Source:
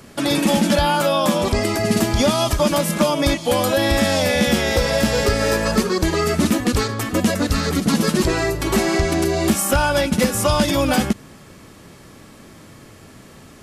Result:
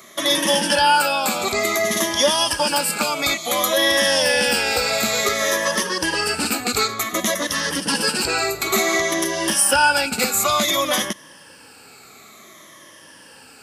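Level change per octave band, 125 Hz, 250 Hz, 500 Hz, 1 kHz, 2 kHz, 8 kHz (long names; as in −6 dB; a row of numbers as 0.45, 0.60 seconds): −14.5, −9.0, −3.0, +1.5, +3.5, +4.5 decibels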